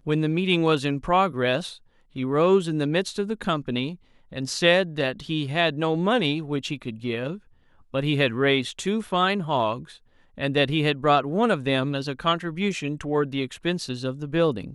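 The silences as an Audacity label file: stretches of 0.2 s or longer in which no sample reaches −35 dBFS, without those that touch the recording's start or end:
1.730000	2.160000	silence
3.950000	4.320000	silence
7.370000	7.940000	silence
9.910000	10.380000	silence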